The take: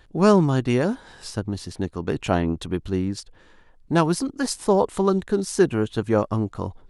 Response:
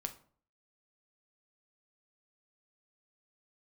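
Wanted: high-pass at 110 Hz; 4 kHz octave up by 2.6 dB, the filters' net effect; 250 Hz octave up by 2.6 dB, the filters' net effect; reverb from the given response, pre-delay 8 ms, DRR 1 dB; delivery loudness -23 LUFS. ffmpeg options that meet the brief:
-filter_complex "[0:a]highpass=110,equalizer=f=250:t=o:g=4,equalizer=f=4000:t=o:g=3.5,asplit=2[s0][s1];[1:a]atrim=start_sample=2205,adelay=8[s2];[s1][s2]afir=irnorm=-1:irlink=0,volume=1[s3];[s0][s3]amix=inputs=2:normalize=0,volume=0.631"

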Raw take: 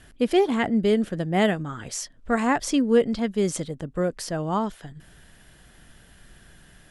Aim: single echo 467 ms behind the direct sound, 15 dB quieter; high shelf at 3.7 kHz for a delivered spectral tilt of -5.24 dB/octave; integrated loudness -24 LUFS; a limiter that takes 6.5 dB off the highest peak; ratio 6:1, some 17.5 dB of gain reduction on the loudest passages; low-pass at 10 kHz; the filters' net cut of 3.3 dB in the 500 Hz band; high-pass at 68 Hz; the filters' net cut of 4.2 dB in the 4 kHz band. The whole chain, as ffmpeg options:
-af "highpass=68,lowpass=10000,equalizer=f=500:t=o:g=-4,highshelf=f=3700:g=-3,equalizer=f=4000:t=o:g=-4,acompressor=threshold=0.0141:ratio=6,alimiter=level_in=2.82:limit=0.0631:level=0:latency=1,volume=0.355,aecho=1:1:467:0.178,volume=7.94"

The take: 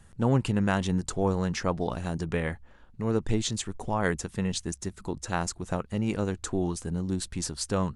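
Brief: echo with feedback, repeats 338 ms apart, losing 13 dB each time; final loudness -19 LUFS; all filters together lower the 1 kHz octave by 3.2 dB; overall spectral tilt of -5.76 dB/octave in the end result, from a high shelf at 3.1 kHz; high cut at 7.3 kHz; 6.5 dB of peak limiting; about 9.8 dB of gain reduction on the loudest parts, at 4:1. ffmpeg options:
-af "lowpass=7300,equalizer=f=1000:t=o:g=-3.5,highshelf=f=3100:g=-6.5,acompressor=threshold=0.0251:ratio=4,alimiter=level_in=1.26:limit=0.0631:level=0:latency=1,volume=0.794,aecho=1:1:338|676|1014:0.224|0.0493|0.0108,volume=9.44"

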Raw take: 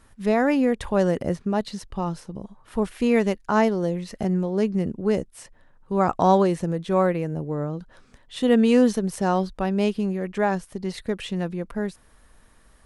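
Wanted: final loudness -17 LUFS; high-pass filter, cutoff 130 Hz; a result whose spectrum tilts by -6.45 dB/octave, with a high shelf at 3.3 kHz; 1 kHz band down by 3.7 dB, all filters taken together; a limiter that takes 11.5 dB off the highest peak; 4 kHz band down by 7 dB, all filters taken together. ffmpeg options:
-af "highpass=130,equalizer=f=1000:t=o:g=-4.5,highshelf=f=3300:g=-3.5,equalizer=f=4000:t=o:g=-7,volume=4.22,alimiter=limit=0.422:level=0:latency=1"

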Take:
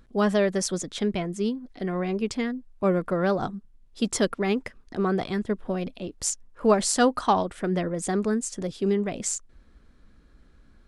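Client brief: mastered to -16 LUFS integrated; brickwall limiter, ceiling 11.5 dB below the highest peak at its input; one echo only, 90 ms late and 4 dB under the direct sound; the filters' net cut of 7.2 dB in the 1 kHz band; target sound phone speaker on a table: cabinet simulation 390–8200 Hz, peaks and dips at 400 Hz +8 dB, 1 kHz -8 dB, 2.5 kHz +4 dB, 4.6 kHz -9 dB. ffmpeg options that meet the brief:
-af "equalizer=f=1000:t=o:g=-7.5,alimiter=limit=0.0944:level=0:latency=1,highpass=f=390:w=0.5412,highpass=f=390:w=1.3066,equalizer=f=400:t=q:w=4:g=8,equalizer=f=1000:t=q:w=4:g=-8,equalizer=f=2500:t=q:w=4:g=4,equalizer=f=4600:t=q:w=4:g=-9,lowpass=f=8200:w=0.5412,lowpass=f=8200:w=1.3066,aecho=1:1:90:0.631,volume=5.31"

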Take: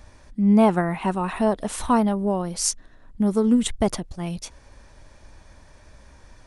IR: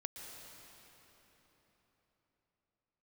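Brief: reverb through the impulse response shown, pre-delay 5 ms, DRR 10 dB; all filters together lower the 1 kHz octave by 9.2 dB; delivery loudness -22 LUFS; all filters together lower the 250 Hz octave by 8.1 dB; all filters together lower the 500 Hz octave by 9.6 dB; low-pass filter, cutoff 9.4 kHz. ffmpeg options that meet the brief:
-filter_complex "[0:a]lowpass=9400,equalizer=f=250:t=o:g=-8.5,equalizer=f=500:t=o:g=-8,equalizer=f=1000:t=o:g=-8,asplit=2[s0][s1];[1:a]atrim=start_sample=2205,adelay=5[s2];[s1][s2]afir=irnorm=-1:irlink=0,volume=0.398[s3];[s0][s3]amix=inputs=2:normalize=0,volume=2.11"

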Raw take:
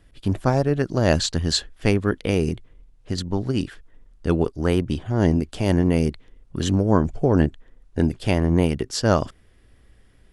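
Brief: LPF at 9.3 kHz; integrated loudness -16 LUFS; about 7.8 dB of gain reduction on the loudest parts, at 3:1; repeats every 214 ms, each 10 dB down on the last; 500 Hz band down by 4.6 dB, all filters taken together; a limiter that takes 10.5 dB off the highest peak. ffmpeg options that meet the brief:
-af "lowpass=9300,equalizer=f=500:t=o:g=-6,acompressor=threshold=0.0631:ratio=3,alimiter=limit=0.075:level=0:latency=1,aecho=1:1:214|428|642|856:0.316|0.101|0.0324|0.0104,volume=8.41"

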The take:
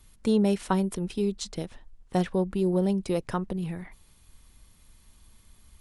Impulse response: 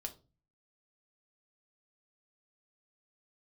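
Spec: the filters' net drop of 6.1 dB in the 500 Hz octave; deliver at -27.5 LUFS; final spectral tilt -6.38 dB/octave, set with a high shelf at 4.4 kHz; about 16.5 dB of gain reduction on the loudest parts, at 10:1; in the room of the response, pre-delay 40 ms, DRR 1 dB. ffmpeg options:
-filter_complex "[0:a]equalizer=f=500:t=o:g=-8.5,highshelf=f=4400:g=-4.5,acompressor=threshold=0.0112:ratio=10,asplit=2[s0][s1];[1:a]atrim=start_sample=2205,adelay=40[s2];[s1][s2]afir=irnorm=-1:irlink=0,volume=1.19[s3];[s0][s3]amix=inputs=2:normalize=0,volume=4.47"

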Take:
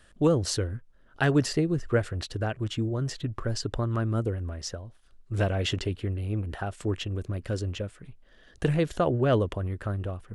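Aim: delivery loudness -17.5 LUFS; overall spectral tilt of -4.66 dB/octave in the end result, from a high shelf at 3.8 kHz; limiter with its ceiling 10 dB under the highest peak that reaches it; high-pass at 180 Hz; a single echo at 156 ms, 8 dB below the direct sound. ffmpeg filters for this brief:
-af "highpass=180,highshelf=f=3800:g=3,alimiter=limit=0.106:level=0:latency=1,aecho=1:1:156:0.398,volume=5.62"

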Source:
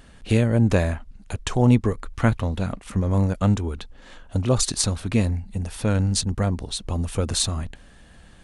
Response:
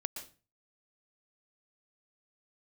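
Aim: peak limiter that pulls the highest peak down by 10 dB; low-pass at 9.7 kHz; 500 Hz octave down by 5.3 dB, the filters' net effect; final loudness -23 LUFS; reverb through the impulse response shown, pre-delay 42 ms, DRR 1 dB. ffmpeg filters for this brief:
-filter_complex "[0:a]lowpass=9700,equalizer=f=500:t=o:g=-6.5,alimiter=limit=0.178:level=0:latency=1,asplit=2[s0][s1];[1:a]atrim=start_sample=2205,adelay=42[s2];[s1][s2]afir=irnorm=-1:irlink=0,volume=0.891[s3];[s0][s3]amix=inputs=2:normalize=0,volume=1.19"

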